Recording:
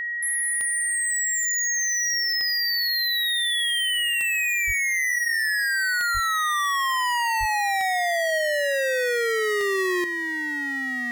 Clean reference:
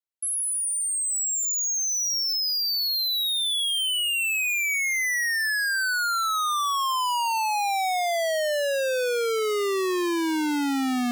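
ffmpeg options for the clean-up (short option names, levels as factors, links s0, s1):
-filter_complex "[0:a]adeclick=t=4,bandreject=f=1900:w=30,asplit=3[s0][s1][s2];[s0]afade=t=out:st=4.66:d=0.02[s3];[s1]highpass=f=140:w=0.5412,highpass=f=140:w=1.3066,afade=t=in:st=4.66:d=0.02,afade=t=out:st=4.78:d=0.02[s4];[s2]afade=t=in:st=4.78:d=0.02[s5];[s3][s4][s5]amix=inputs=3:normalize=0,asplit=3[s6][s7][s8];[s6]afade=t=out:st=6.13:d=0.02[s9];[s7]highpass=f=140:w=0.5412,highpass=f=140:w=1.3066,afade=t=in:st=6.13:d=0.02,afade=t=out:st=6.25:d=0.02[s10];[s8]afade=t=in:st=6.25:d=0.02[s11];[s9][s10][s11]amix=inputs=3:normalize=0,asplit=3[s12][s13][s14];[s12]afade=t=out:st=7.39:d=0.02[s15];[s13]highpass=f=140:w=0.5412,highpass=f=140:w=1.3066,afade=t=in:st=7.39:d=0.02,afade=t=out:st=7.51:d=0.02[s16];[s14]afade=t=in:st=7.51:d=0.02[s17];[s15][s16][s17]amix=inputs=3:normalize=0,asetnsamples=n=441:p=0,asendcmd='10.04 volume volume 10dB',volume=1"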